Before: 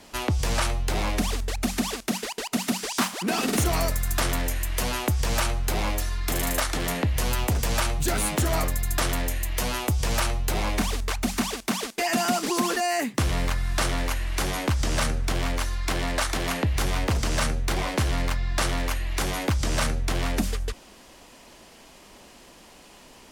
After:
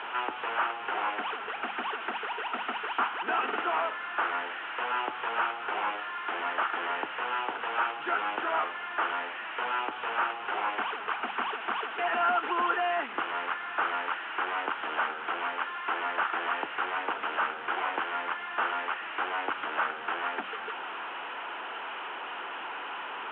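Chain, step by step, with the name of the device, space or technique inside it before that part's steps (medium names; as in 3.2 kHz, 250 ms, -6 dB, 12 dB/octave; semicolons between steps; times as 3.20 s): digital answering machine (band-pass 400–3100 Hz; one-bit delta coder 16 kbps, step -32 dBFS; cabinet simulation 440–3300 Hz, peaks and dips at 580 Hz -9 dB, 890 Hz +4 dB, 1.4 kHz +8 dB, 2.1 kHz -5 dB, 3 kHz +4 dB)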